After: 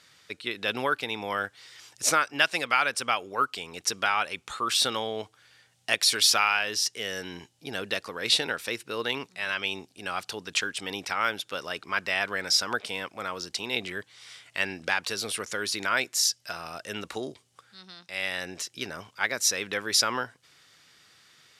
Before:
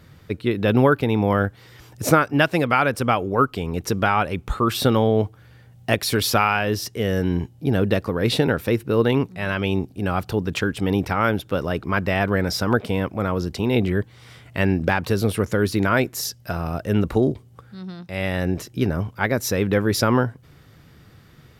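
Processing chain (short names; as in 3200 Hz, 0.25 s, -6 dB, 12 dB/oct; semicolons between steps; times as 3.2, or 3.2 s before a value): weighting filter ITU-R 468; gain -7 dB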